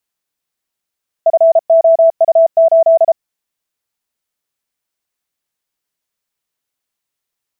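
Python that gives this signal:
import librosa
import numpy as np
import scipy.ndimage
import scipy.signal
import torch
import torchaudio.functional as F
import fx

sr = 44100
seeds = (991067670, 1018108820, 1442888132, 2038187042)

y = fx.morse(sr, text='FOU8', wpm=33, hz=658.0, level_db=-4.5)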